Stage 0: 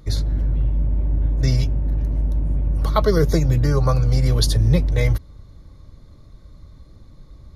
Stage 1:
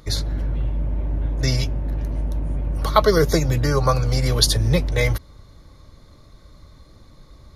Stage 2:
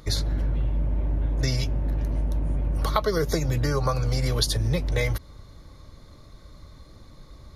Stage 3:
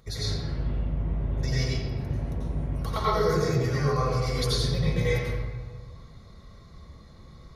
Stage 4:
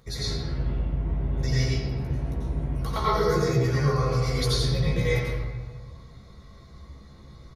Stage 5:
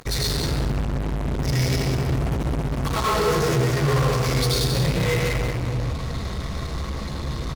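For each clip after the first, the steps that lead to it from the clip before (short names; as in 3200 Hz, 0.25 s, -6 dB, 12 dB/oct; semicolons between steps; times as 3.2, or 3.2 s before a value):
low shelf 360 Hz -10 dB; gain +6 dB
compressor 6:1, threshold -20 dBFS, peak gain reduction 11 dB
notch comb 300 Hz; reverb RT60 1.4 s, pre-delay 84 ms, DRR -9 dB; gain -8.5 dB
doubler 15 ms -5 dB
in parallel at -7 dB: fuzz box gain 48 dB, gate -54 dBFS; on the sum: echo 0.188 s -7.5 dB; gain -4.5 dB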